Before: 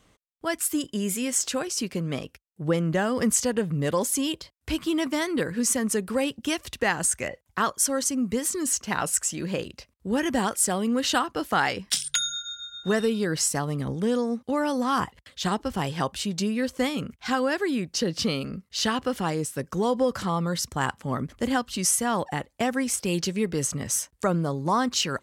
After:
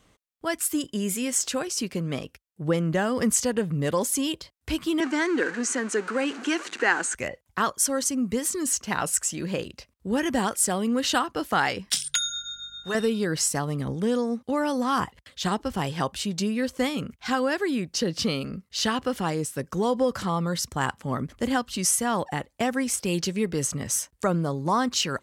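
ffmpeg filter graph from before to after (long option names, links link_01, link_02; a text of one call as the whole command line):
ffmpeg -i in.wav -filter_complex "[0:a]asettb=1/sr,asplit=3[link_01][link_02][link_03];[link_01]atrim=end=5.004[link_04];[link_02]atrim=start=5:end=7.15,asetpts=PTS-STARTPTS,afade=type=in:duration=0.004:curve=qsin,afade=type=out:start_time=2.146:duration=0.004:curve=qsin,aeval=exprs='val(0)+0.5*0.0316*sgn(val(0))':channel_layout=same,highpass=frequency=270:width=0.5412,highpass=frequency=270:width=1.3066,equalizer=frequency=350:width_type=q:width=4:gain=3,equalizer=frequency=600:width_type=q:width=4:gain=-7,equalizer=frequency=1500:width_type=q:width=4:gain=8,equalizer=frequency=3500:width_type=q:width=4:gain=-7,equalizer=frequency=5200:width_type=q:width=4:gain=-7,lowpass=frequency=7300:width=0.5412,lowpass=frequency=7300:width=1.3066[link_05];[link_03]atrim=start=7.146[link_06];[link_04][link_05]acrossfade=duration=0.004:curve1=hsin:curve2=qsin[link_07];[link_07][link_06]acrossfade=duration=0.004:curve1=qsin:curve2=hsin,asettb=1/sr,asplit=3[link_08][link_09][link_10];[link_08]atrim=end=12.184[link_11];[link_09]atrim=start=12.18:end=12.95,asetpts=PTS-STARTPTS,afade=type=in:duration=0.004:curve=qsin,afade=type=out:start_time=0.766:duration=0.004:curve=qsin,equalizer=frequency=240:width=0.65:gain=-11.5,aeval=exprs='val(0)+0.000794*(sin(2*PI*50*n/s)+sin(2*PI*2*50*n/s)/2+sin(2*PI*3*50*n/s)/3+sin(2*PI*4*50*n/s)/4+sin(2*PI*5*50*n/s)/5)':channel_layout=same[link_12];[link_10]atrim=start=12.946[link_13];[link_11][link_12]acrossfade=duration=0.004:curve1=hsin:curve2=qsin[link_14];[link_14][link_13]acrossfade=duration=0.004:curve1=qsin:curve2=hsin" out.wav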